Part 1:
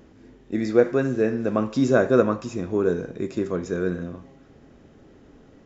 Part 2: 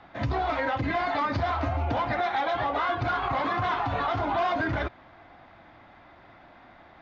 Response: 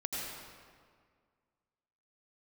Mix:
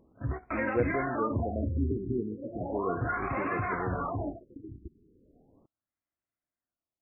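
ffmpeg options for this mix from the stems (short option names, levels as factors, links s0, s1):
-filter_complex "[0:a]volume=0.266,asplit=2[s0][s1];[1:a]equalizer=f=830:t=o:w=0.66:g=-9.5,volume=0.841[s2];[s1]apad=whole_len=309466[s3];[s2][s3]sidechaingate=range=0.00794:threshold=0.00112:ratio=16:detection=peak[s4];[s0][s4]amix=inputs=2:normalize=0,afftfilt=real='re*lt(b*sr/1024,420*pow(2800/420,0.5+0.5*sin(2*PI*0.36*pts/sr)))':imag='im*lt(b*sr/1024,420*pow(2800/420,0.5+0.5*sin(2*PI*0.36*pts/sr)))':win_size=1024:overlap=0.75"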